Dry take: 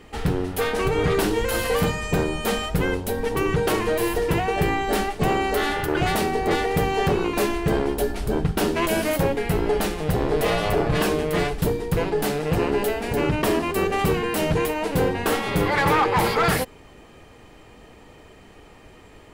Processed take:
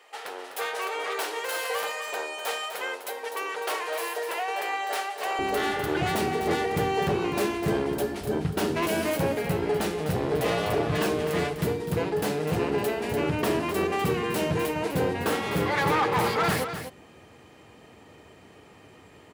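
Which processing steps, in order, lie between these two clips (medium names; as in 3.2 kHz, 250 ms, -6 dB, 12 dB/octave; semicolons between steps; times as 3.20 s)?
tracing distortion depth 0.029 ms; high-pass 550 Hz 24 dB/octave, from 5.39 s 79 Hz; saturation -12 dBFS, distortion -23 dB; delay 251 ms -9.5 dB; trim -3.5 dB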